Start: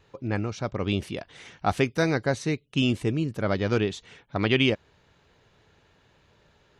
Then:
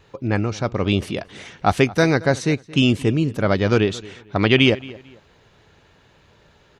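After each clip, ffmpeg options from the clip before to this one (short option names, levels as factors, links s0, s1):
-filter_complex "[0:a]asplit=2[s0][s1];[s1]adelay=224,lowpass=f=3600:p=1,volume=0.1,asplit=2[s2][s3];[s3]adelay=224,lowpass=f=3600:p=1,volume=0.3[s4];[s0][s2][s4]amix=inputs=3:normalize=0,volume=2.24"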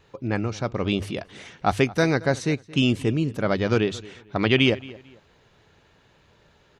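-af "bandreject=f=50:t=h:w=6,bandreject=f=100:t=h:w=6,volume=0.631"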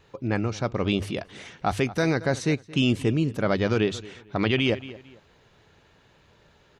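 -af "alimiter=limit=0.237:level=0:latency=1:release=26"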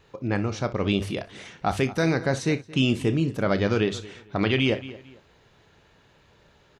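-af "aecho=1:1:30|61:0.224|0.141"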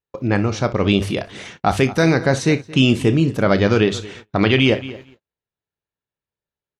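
-af "agate=range=0.00794:threshold=0.00562:ratio=16:detection=peak,volume=2.37"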